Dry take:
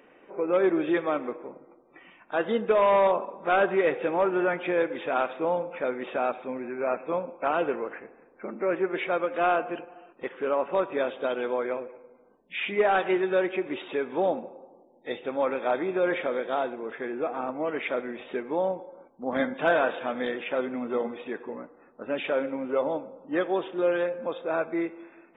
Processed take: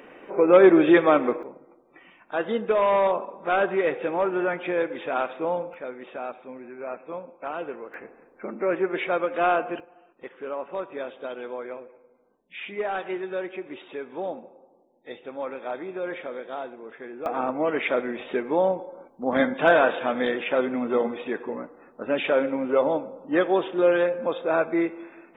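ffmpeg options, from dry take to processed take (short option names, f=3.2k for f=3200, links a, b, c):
-af "asetnsamples=n=441:p=0,asendcmd='1.43 volume volume 0dB;5.74 volume volume -6.5dB;7.94 volume volume 2dB;9.8 volume volume -6dB;17.26 volume volume 5dB',volume=9dB"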